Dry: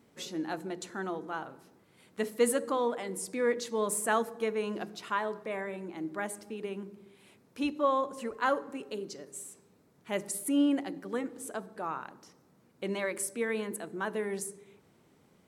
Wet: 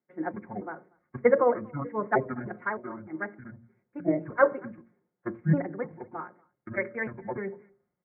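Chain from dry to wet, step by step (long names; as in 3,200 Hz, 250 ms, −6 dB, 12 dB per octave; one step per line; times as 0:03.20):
pitch shifter gated in a rhythm −9.5 semitones, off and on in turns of 591 ms
low-shelf EQ 120 Hz −5 dB
comb filter 5.6 ms, depth 54%
in parallel at −3 dB: downward compressor, threshold −38 dBFS, peak gain reduction 15.5 dB
on the sum: Chebyshev low-pass with heavy ripple 2,200 Hz, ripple 3 dB
phase-vocoder stretch with locked phases 0.52×
hum removal 57.34 Hz, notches 11
on a send: single-tap delay 239 ms −21 dB
on the sum: multiband upward and downward expander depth 100%
level +2 dB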